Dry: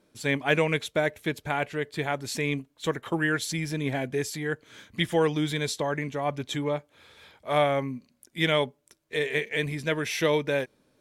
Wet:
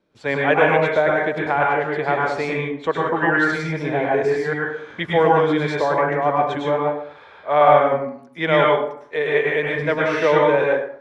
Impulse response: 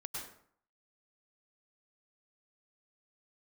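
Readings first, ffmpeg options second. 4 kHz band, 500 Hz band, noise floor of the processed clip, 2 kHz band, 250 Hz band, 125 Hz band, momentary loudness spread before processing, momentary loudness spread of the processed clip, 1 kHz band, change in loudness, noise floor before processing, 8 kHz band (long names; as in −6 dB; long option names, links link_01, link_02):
−0.5 dB, +10.5 dB, −45 dBFS, +8.5 dB, +5.5 dB, +3.5 dB, 9 LU, 9 LU, +13.5 dB, +9.0 dB, −69 dBFS, can't be measured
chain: -filter_complex "[0:a]lowpass=4200,acrossover=split=450|1600[link_01][link_02][link_03];[link_02]dynaudnorm=framelen=120:gausssize=3:maxgain=14.5dB[link_04];[link_01][link_04][link_03]amix=inputs=3:normalize=0[link_05];[1:a]atrim=start_sample=2205[link_06];[link_05][link_06]afir=irnorm=-1:irlink=0,volume=1.5dB"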